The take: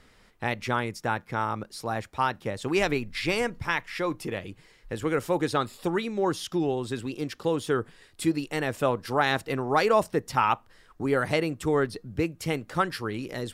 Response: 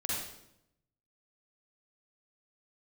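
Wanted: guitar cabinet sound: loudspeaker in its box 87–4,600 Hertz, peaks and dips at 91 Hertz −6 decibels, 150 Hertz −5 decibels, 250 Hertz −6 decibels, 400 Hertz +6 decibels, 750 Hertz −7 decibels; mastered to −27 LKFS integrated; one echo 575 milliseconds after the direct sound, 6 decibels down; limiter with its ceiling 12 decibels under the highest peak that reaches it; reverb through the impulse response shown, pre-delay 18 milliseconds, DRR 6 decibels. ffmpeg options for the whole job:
-filter_complex "[0:a]alimiter=limit=-21.5dB:level=0:latency=1,aecho=1:1:575:0.501,asplit=2[link_01][link_02];[1:a]atrim=start_sample=2205,adelay=18[link_03];[link_02][link_03]afir=irnorm=-1:irlink=0,volume=-10.5dB[link_04];[link_01][link_04]amix=inputs=2:normalize=0,highpass=87,equalizer=frequency=91:width_type=q:width=4:gain=-6,equalizer=frequency=150:width_type=q:width=4:gain=-5,equalizer=frequency=250:width_type=q:width=4:gain=-6,equalizer=frequency=400:width_type=q:width=4:gain=6,equalizer=frequency=750:width_type=q:width=4:gain=-7,lowpass=frequency=4600:width=0.5412,lowpass=frequency=4600:width=1.3066,volume=4dB"

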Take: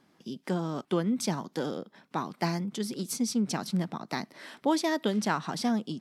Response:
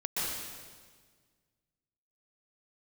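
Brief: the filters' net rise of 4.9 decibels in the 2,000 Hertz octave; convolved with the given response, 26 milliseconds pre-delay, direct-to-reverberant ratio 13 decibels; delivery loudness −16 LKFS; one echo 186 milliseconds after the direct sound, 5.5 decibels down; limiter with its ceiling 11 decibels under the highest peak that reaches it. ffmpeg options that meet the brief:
-filter_complex "[0:a]equalizer=frequency=2000:width_type=o:gain=6,alimiter=limit=-21.5dB:level=0:latency=1,aecho=1:1:186:0.531,asplit=2[link_01][link_02];[1:a]atrim=start_sample=2205,adelay=26[link_03];[link_02][link_03]afir=irnorm=-1:irlink=0,volume=-20dB[link_04];[link_01][link_04]amix=inputs=2:normalize=0,volume=15.5dB"

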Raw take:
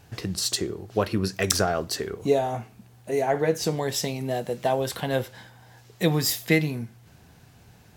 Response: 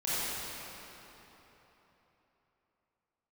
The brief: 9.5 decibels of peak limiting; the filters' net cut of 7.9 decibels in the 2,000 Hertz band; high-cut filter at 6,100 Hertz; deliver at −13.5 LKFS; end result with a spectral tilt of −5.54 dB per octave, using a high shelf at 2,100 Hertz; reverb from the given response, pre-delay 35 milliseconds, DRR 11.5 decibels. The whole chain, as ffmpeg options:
-filter_complex "[0:a]lowpass=6100,equalizer=frequency=2000:width_type=o:gain=-7,highshelf=frequency=2100:gain=-4.5,alimiter=limit=-19dB:level=0:latency=1,asplit=2[link_01][link_02];[1:a]atrim=start_sample=2205,adelay=35[link_03];[link_02][link_03]afir=irnorm=-1:irlink=0,volume=-20.5dB[link_04];[link_01][link_04]amix=inputs=2:normalize=0,volume=17.5dB"

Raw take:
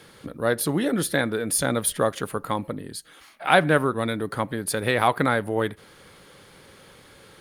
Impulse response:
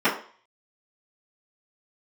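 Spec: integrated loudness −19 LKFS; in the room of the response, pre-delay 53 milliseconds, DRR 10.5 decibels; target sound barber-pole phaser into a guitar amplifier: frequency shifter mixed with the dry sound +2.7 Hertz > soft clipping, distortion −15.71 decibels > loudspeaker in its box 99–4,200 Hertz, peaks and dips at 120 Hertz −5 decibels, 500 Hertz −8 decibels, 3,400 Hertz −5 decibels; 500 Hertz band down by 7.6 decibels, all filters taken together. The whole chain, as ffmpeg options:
-filter_complex "[0:a]equalizer=frequency=500:width_type=o:gain=-5,asplit=2[link_01][link_02];[1:a]atrim=start_sample=2205,adelay=53[link_03];[link_02][link_03]afir=irnorm=-1:irlink=0,volume=-28.5dB[link_04];[link_01][link_04]amix=inputs=2:normalize=0,asplit=2[link_05][link_06];[link_06]afreqshift=2.7[link_07];[link_05][link_07]amix=inputs=2:normalize=1,asoftclip=threshold=-17dB,highpass=99,equalizer=frequency=120:width_type=q:width=4:gain=-5,equalizer=frequency=500:width_type=q:width=4:gain=-8,equalizer=frequency=3400:width_type=q:width=4:gain=-5,lowpass=frequency=4200:width=0.5412,lowpass=frequency=4200:width=1.3066,volume=13dB"

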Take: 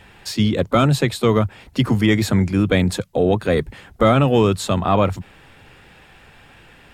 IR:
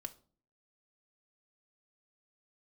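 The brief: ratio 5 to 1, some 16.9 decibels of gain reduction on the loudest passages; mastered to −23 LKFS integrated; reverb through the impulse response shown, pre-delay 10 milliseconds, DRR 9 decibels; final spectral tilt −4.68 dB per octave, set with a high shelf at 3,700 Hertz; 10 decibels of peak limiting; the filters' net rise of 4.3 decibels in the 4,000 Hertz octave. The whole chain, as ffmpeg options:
-filter_complex "[0:a]highshelf=frequency=3700:gain=-4.5,equalizer=frequency=4000:width_type=o:gain=8,acompressor=threshold=-31dB:ratio=5,alimiter=level_in=2dB:limit=-24dB:level=0:latency=1,volume=-2dB,asplit=2[link_01][link_02];[1:a]atrim=start_sample=2205,adelay=10[link_03];[link_02][link_03]afir=irnorm=-1:irlink=0,volume=-5.5dB[link_04];[link_01][link_04]amix=inputs=2:normalize=0,volume=14dB"

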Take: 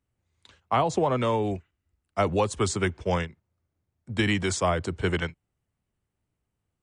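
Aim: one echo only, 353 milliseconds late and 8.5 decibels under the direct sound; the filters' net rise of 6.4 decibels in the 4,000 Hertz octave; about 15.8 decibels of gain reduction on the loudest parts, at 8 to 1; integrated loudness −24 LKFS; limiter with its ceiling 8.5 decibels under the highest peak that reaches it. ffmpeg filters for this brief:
ffmpeg -i in.wav -af "equalizer=frequency=4000:width_type=o:gain=9,acompressor=threshold=-36dB:ratio=8,alimiter=level_in=6.5dB:limit=-24dB:level=0:latency=1,volume=-6.5dB,aecho=1:1:353:0.376,volume=18.5dB" out.wav

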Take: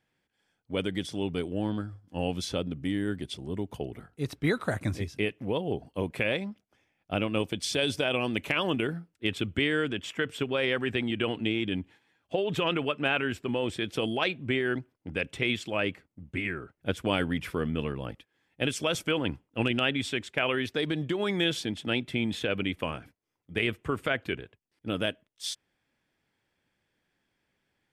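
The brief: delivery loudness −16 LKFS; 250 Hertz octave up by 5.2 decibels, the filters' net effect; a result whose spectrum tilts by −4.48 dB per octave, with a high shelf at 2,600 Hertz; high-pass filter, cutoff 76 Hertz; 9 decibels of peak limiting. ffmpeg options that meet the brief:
ffmpeg -i in.wav -af "highpass=76,equalizer=frequency=250:width_type=o:gain=6.5,highshelf=frequency=2600:gain=6.5,volume=14dB,alimiter=limit=-3dB:level=0:latency=1" out.wav

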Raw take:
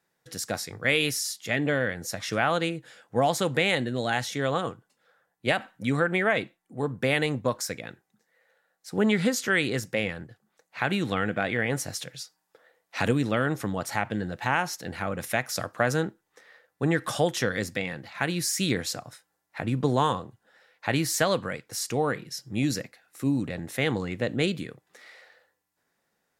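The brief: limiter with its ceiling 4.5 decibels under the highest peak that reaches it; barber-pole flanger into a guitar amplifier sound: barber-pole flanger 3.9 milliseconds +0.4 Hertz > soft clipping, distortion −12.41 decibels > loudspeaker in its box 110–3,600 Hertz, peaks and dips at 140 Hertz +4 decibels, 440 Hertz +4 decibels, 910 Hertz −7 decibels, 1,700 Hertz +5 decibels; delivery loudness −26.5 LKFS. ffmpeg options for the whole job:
ffmpeg -i in.wav -filter_complex "[0:a]alimiter=limit=-14dB:level=0:latency=1,asplit=2[link_01][link_02];[link_02]adelay=3.9,afreqshift=0.4[link_03];[link_01][link_03]amix=inputs=2:normalize=1,asoftclip=threshold=-25.5dB,highpass=110,equalizer=frequency=140:width_type=q:width=4:gain=4,equalizer=frequency=440:width_type=q:width=4:gain=4,equalizer=frequency=910:width_type=q:width=4:gain=-7,equalizer=frequency=1700:width_type=q:width=4:gain=5,lowpass=frequency=3600:width=0.5412,lowpass=frequency=3600:width=1.3066,volume=7dB" out.wav

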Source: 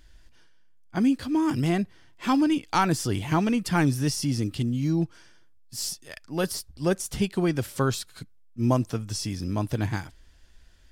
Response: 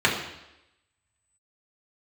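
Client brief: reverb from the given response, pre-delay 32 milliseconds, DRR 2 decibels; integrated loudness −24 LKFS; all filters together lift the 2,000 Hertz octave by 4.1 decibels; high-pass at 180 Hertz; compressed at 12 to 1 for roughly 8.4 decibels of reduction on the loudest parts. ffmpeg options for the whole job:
-filter_complex "[0:a]highpass=180,equalizer=frequency=2000:width_type=o:gain=5.5,acompressor=threshold=-26dB:ratio=12,asplit=2[link_01][link_02];[1:a]atrim=start_sample=2205,adelay=32[link_03];[link_02][link_03]afir=irnorm=-1:irlink=0,volume=-20dB[link_04];[link_01][link_04]amix=inputs=2:normalize=0,volume=6.5dB"

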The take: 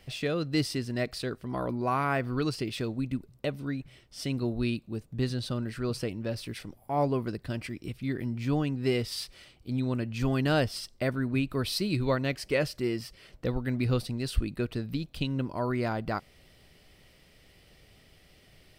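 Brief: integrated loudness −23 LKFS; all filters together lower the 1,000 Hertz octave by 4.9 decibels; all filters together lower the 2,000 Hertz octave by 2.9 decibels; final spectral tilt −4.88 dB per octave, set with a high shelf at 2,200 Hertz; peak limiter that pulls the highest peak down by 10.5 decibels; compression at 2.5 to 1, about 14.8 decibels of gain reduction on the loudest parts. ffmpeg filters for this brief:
ffmpeg -i in.wav -af "equalizer=frequency=1000:width_type=o:gain=-7,equalizer=frequency=2000:width_type=o:gain=-6.5,highshelf=frequency=2200:gain=8,acompressor=threshold=-42dB:ratio=2.5,volume=21.5dB,alimiter=limit=-13dB:level=0:latency=1" out.wav

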